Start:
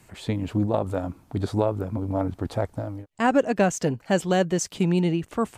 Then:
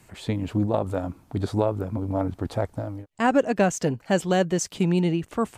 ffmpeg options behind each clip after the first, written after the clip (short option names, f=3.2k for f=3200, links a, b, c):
-af anull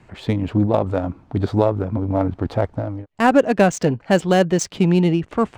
-af "adynamicsmooth=sensitivity=6:basefreq=3.1k,volume=6dB"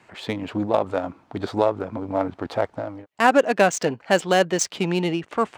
-af "highpass=f=670:p=1,volume=2dB"